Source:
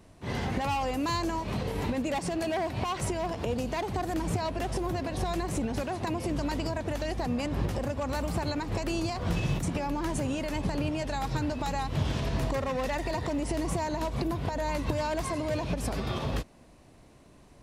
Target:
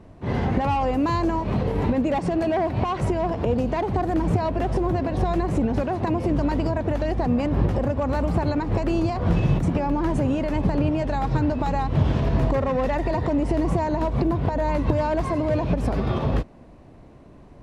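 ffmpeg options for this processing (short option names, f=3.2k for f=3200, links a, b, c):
-af "lowpass=f=1k:p=1,volume=9dB"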